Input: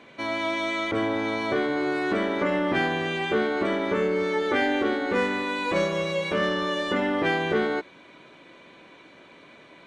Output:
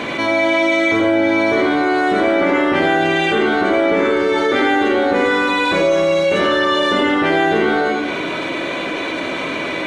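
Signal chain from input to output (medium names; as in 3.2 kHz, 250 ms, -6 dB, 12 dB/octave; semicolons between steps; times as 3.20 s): reverberation, pre-delay 75 ms, DRR -4 dB; level flattener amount 70%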